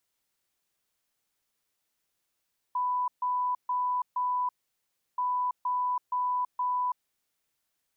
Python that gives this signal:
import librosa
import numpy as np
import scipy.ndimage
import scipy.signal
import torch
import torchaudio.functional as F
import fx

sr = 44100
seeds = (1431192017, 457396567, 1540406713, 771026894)

y = fx.beep_pattern(sr, wave='sine', hz=994.0, on_s=0.33, off_s=0.14, beeps=4, pause_s=0.69, groups=2, level_db=-25.5)